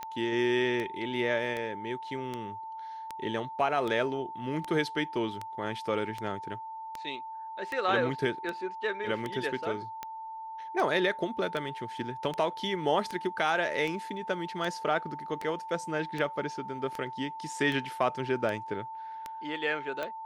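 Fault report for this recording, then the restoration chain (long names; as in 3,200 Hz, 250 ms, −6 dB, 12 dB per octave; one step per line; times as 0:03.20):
scratch tick 78 rpm −21 dBFS
whistle 890 Hz −38 dBFS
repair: click removal
notch filter 890 Hz, Q 30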